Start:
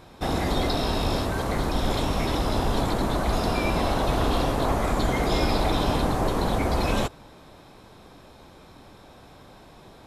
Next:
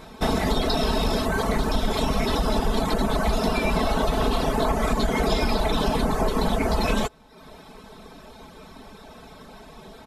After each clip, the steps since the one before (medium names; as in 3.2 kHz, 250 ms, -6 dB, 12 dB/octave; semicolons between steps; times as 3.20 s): reverb removal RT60 0.71 s; comb 4.6 ms; compression, threshold -23 dBFS, peak gain reduction 6 dB; trim +5 dB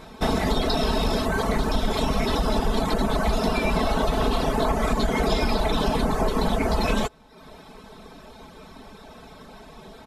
treble shelf 10 kHz -3.5 dB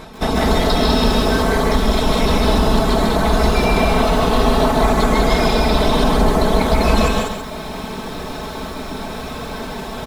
reverse; upward compressor, threshold -24 dBFS; reverse; loudspeakers at several distances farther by 52 m -3 dB, 68 m -3 dB; bit-crushed delay 135 ms, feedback 35%, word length 7-bit, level -6.5 dB; trim +4 dB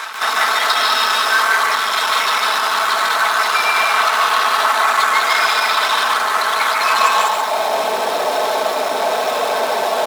in parallel at -10.5 dB: fuzz box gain 37 dB, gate -40 dBFS; on the sum: high-pass sweep 1.3 kHz -> 620 Hz, 6.84–7.81 s; trim +1.5 dB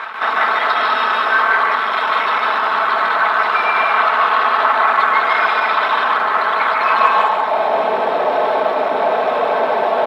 distance through air 490 m; trim +4 dB